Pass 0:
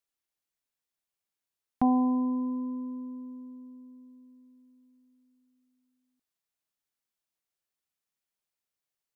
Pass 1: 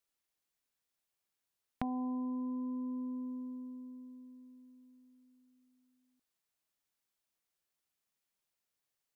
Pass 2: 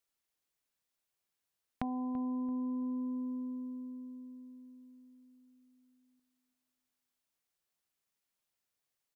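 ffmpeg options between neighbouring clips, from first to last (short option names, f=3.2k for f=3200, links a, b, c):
-af "acompressor=threshold=-38dB:ratio=6,volume=1.5dB"
-filter_complex "[0:a]asplit=2[a][b];[b]adelay=336,lowpass=f=1.4k:p=1,volume=-13.5dB,asplit=2[c][d];[d]adelay=336,lowpass=f=1.4k:p=1,volume=0.38,asplit=2[e][f];[f]adelay=336,lowpass=f=1.4k:p=1,volume=0.38,asplit=2[g][h];[h]adelay=336,lowpass=f=1.4k:p=1,volume=0.38[i];[a][c][e][g][i]amix=inputs=5:normalize=0"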